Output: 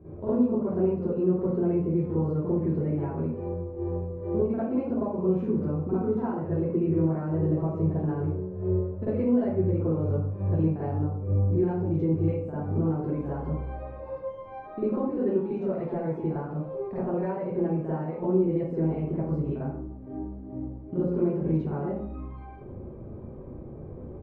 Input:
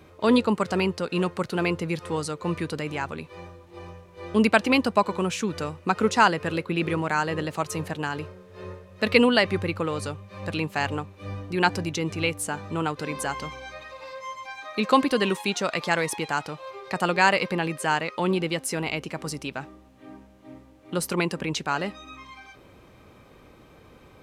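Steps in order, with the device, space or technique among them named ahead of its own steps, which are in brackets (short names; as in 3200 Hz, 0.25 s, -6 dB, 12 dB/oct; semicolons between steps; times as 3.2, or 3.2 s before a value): doubler 28 ms -12.5 dB; 10.97–11.48 air absorption 350 m; television next door (compressor 4:1, threshold -34 dBFS, peak gain reduction 18 dB; LPF 380 Hz 12 dB/oct; reverb RT60 0.60 s, pre-delay 42 ms, DRR -11.5 dB); gain +2 dB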